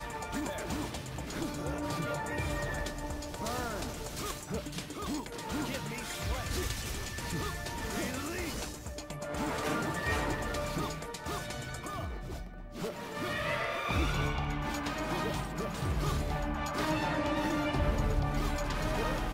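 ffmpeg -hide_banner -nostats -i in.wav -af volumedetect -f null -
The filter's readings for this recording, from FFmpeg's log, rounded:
mean_volume: -34.4 dB
max_volume: -18.4 dB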